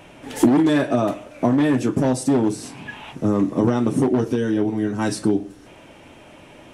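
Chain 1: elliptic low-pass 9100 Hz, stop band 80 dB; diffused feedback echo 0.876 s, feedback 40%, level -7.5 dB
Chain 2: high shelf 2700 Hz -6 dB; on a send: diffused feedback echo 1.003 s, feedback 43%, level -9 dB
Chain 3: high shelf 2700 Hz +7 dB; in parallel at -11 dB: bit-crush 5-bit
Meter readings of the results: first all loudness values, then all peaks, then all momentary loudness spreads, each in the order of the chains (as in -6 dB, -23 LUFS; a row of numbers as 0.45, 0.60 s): -21.5, -21.0, -18.0 LUFS; -6.5, -6.0, -3.0 dBFS; 12, 12, 10 LU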